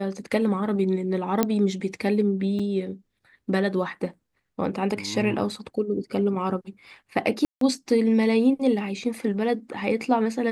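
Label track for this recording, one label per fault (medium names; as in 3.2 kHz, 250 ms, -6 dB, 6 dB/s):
1.430000	1.430000	pop -7 dBFS
2.590000	2.600000	dropout 5.2 ms
7.450000	7.610000	dropout 163 ms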